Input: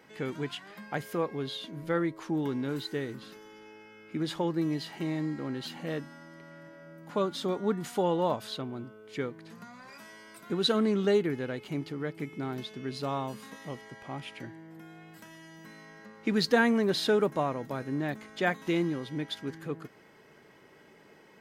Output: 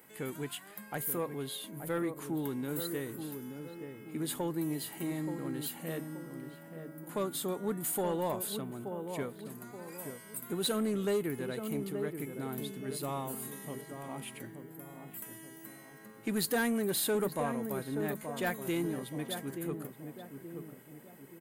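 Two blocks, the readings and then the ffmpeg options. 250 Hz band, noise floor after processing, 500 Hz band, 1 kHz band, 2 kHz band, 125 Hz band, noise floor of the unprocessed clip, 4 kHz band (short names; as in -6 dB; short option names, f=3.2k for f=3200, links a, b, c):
-4.0 dB, -53 dBFS, -4.5 dB, -5.0 dB, -6.0 dB, -4.0 dB, -57 dBFS, -5.5 dB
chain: -filter_complex "[0:a]asplit=2[a][b];[b]adelay=877,lowpass=f=860:p=1,volume=-7dB,asplit=2[c][d];[d]adelay=877,lowpass=f=860:p=1,volume=0.48,asplit=2[e][f];[f]adelay=877,lowpass=f=860:p=1,volume=0.48,asplit=2[g][h];[h]adelay=877,lowpass=f=860:p=1,volume=0.48,asplit=2[i][j];[j]adelay=877,lowpass=f=860:p=1,volume=0.48,asplit=2[k][l];[l]adelay=877,lowpass=f=860:p=1,volume=0.48[m];[a][c][e][g][i][k][m]amix=inputs=7:normalize=0,aexciter=amount=7.9:drive=8.2:freq=8k,asoftclip=type=tanh:threshold=-20dB,volume=-4dB"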